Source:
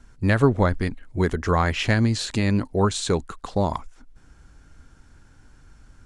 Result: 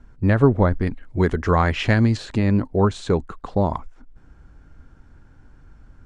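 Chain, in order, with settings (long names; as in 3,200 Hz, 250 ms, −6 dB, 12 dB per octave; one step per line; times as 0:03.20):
low-pass filter 1,100 Hz 6 dB per octave, from 0:00.87 2,700 Hz, from 0:02.17 1,200 Hz
level +3 dB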